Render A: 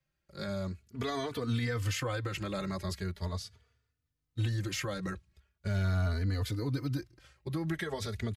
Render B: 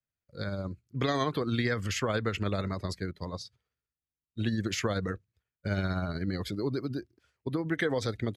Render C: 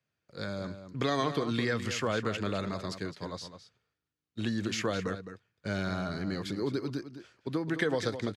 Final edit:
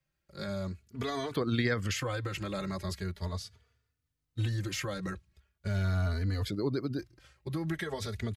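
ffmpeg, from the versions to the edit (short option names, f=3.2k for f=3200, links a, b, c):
-filter_complex "[1:a]asplit=2[a][b];[0:a]asplit=3[c][d][e];[c]atrim=end=1.362[f];[a]atrim=start=1.358:end=1.962[g];[d]atrim=start=1.958:end=6.452[h];[b]atrim=start=6.448:end=6.992[i];[e]atrim=start=6.988[j];[f][g]acrossfade=d=0.004:c1=hsin:c2=hsin[k];[k][h]acrossfade=d=0.004:c1=hsin:c2=hsin[l];[l][i]acrossfade=d=0.004:c1=hsin:c2=hsin[m];[m][j]acrossfade=d=0.004:c1=hsin:c2=hsin"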